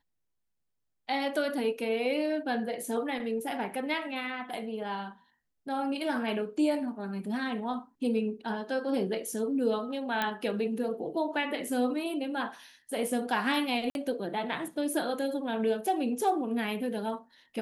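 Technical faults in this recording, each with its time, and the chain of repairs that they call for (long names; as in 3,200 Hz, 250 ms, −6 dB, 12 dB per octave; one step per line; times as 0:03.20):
0:10.22: click −15 dBFS
0:13.90–0:13.95: drop-out 51 ms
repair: click removal
repair the gap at 0:13.90, 51 ms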